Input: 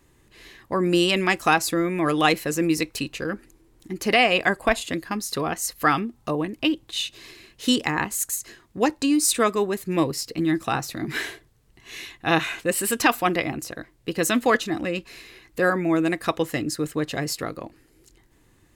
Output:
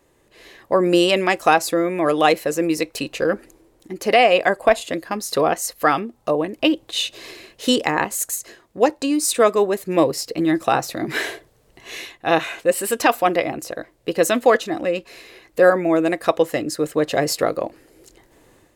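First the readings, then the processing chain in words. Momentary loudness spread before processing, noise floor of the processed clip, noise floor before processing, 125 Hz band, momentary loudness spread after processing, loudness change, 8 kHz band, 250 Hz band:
12 LU, -59 dBFS, -60 dBFS, -1.5 dB, 12 LU, +4.0 dB, +1.0 dB, +2.0 dB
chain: bell 570 Hz +10.5 dB 1 oct; AGC gain up to 8 dB; low shelf 190 Hz -6.5 dB; gain -1 dB

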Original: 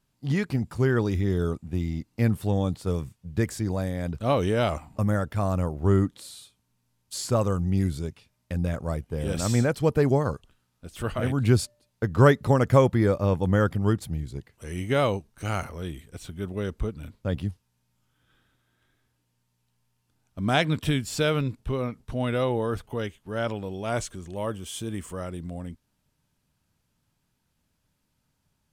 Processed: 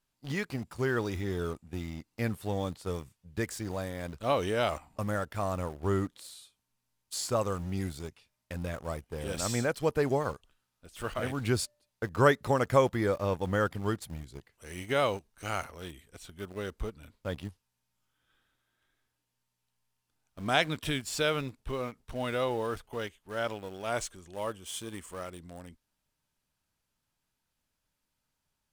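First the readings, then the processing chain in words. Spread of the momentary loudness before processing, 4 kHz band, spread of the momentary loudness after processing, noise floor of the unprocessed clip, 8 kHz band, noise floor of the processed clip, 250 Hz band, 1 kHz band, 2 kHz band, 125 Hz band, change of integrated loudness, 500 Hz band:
13 LU, -1.5 dB, 15 LU, -74 dBFS, -2.0 dB, -83 dBFS, -8.5 dB, -2.5 dB, -2.0 dB, -11.0 dB, -6.0 dB, -4.5 dB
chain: bell 130 Hz -9.5 dB 2.9 oct; in parallel at -6 dB: sample gate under -35.5 dBFS; on the sum: gain -5 dB

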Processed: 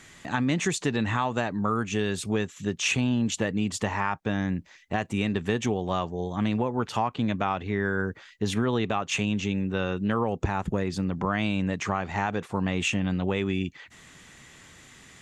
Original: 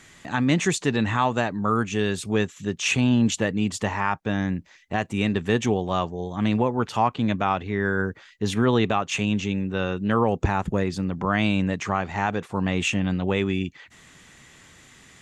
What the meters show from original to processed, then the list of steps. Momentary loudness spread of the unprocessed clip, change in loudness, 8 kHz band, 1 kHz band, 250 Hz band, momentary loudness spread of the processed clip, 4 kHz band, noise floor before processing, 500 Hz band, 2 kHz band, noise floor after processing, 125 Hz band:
6 LU, -3.5 dB, -2.0 dB, -4.0 dB, -3.5 dB, 4 LU, -2.5 dB, -52 dBFS, -4.0 dB, -3.0 dB, -52 dBFS, -3.5 dB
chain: compressor 4:1, threshold -22 dBFS, peak gain reduction 6.5 dB

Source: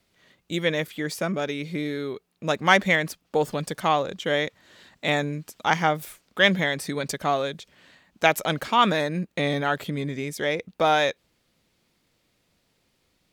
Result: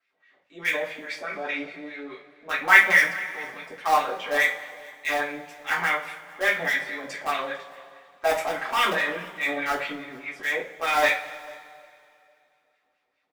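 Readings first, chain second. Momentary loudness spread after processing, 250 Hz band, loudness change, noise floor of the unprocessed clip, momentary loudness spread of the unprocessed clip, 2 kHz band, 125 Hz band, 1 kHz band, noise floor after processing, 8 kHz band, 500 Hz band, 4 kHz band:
17 LU, -10.5 dB, +0.5 dB, -71 dBFS, 11 LU, +4.5 dB, -18.5 dB, -1.5 dB, -73 dBFS, -2.0 dB, -4.5 dB, -4.0 dB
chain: wah 4.8 Hz 650–2300 Hz, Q 3.2; in parallel at -8.5 dB: bit-crush 4-bit; on the sum: transient shaper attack -4 dB, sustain +8 dB; on a send: echo 0.448 s -23 dB; on the sum: two-slope reverb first 0.28 s, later 2.6 s, from -21 dB, DRR -6.5 dB; dynamic EQ 2100 Hz, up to +4 dB, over -35 dBFS, Q 0.87; gain -3.5 dB

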